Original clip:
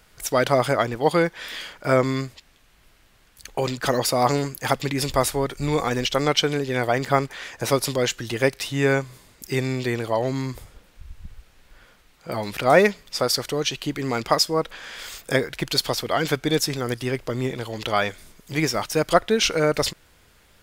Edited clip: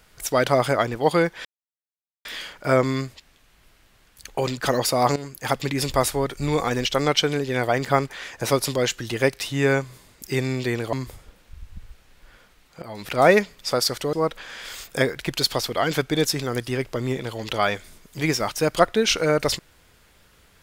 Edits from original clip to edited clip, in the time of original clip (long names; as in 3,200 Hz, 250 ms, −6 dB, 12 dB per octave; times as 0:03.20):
0:01.45: splice in silence 0.80 s
0:04.36–0:04.96: fade in equal-power, from −13.5 dB
0:10.13–0:10.41: remove
0:12.30–0:12.68: fade in, from −15.5 dB
0:13.61–0:14.47: remove